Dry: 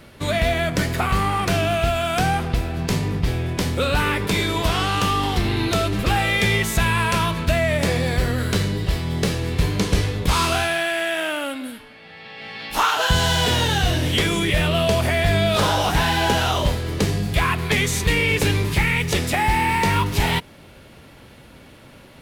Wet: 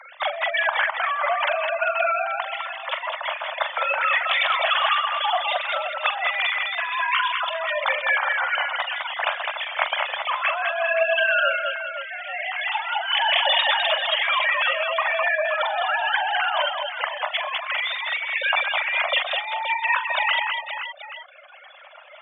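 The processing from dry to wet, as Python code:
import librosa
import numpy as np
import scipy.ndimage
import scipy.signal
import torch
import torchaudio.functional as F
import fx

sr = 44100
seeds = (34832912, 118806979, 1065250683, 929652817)

p1 = fx.sine_speech(x, sr)
p2 = fx.dereverb_blind(p1, sr, rt60_s=1.7)
p3 = scipy.signal.sosfilt(scipy.signal.butter(16, 590.0, 'highpass', fs=sr, output='sos'), p2)
p4 = fx.dereverb_blind(p3, sr, rt60_s=1.6)
p5 = fx.over_compress(p4, sr, threshold_db=-29.0, ratio=-1.0)
p6 = p5 + fx.echo_multitap(p5, sr, ms=(43, 128, 207, 399, 523, 831), db=(-9.0, -19.0, -4.5, -15.5, -10.0, -15.5), dry=0)
y = F.gain(torch.from_numpy(p6), 3.5).numpy()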